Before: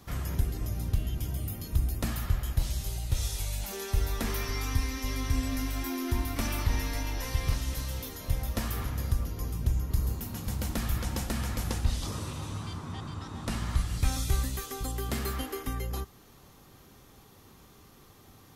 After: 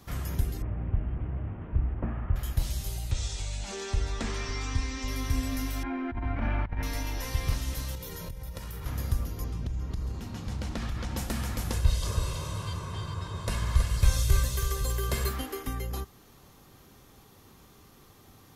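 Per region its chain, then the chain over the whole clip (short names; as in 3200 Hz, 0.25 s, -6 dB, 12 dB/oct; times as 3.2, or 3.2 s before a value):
0.62–2.36 delta modulation 16 kbps, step -39 dBFS + LPF 1200 Hz
3.11–5.08 Chebyshev low-pass 7900 Hz, order 4 + upward compressor, threshold -31 dBFS
5.83–6.83 LPF 2200 Hz 24 dB/oct + comb 1.3 ms, depth 37% + negative-ratio compressor -28 dBFS, ratio -0.5
7.95–8.86 bell 170 Hz +14.5 dB 0.34 oct + comb 2.1 ms, depth 63% + compressor 16:1, threshold -34 dBFS
9.44–11.17 LPF 5500 Hz + compressor 5:1, threshold -28 dBFS
11.73–15.29 comb 1.9 ms, depth 73% + echo 0.324 s -7 dB
whole clip: dry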